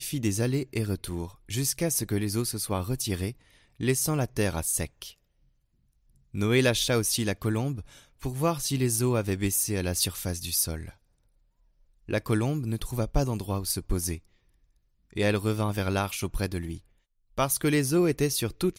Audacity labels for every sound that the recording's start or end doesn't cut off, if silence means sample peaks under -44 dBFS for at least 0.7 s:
6.340000	10.910000	sound
12.090000	14.190000	sound